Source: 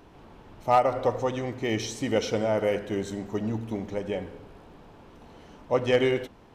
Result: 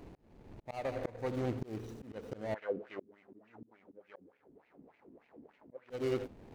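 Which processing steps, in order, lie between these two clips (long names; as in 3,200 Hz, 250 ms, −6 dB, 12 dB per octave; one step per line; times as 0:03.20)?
running median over 41 samples
0:02.54–0:05.90: LFO wah 3.4 Hz 240–2,400 Hz, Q 3.6
volume swells 639 ms
level +2.5 dB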